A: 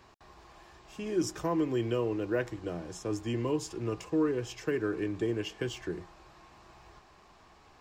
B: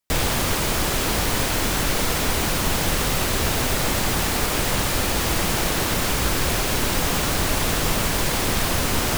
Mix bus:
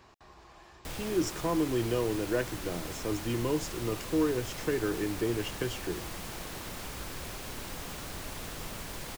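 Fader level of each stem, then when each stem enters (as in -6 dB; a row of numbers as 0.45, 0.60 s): +0.5, -18.5 dB; 0.00, 0.75 s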